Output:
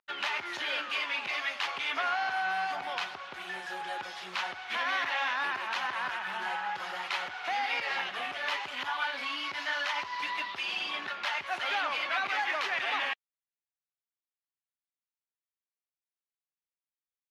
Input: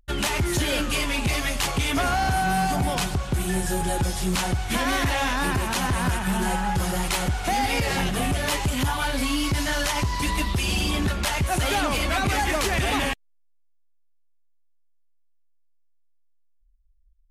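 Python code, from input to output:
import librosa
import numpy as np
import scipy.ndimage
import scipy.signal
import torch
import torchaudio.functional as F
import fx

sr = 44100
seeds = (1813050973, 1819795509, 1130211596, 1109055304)

y = scipy.signal.sosfilt(scipy.signal.butter(2, 1100.0, 'highpass', fs=sr, output='sos'), x)
y = fx.air_absorb(y, sr, metres=280.0)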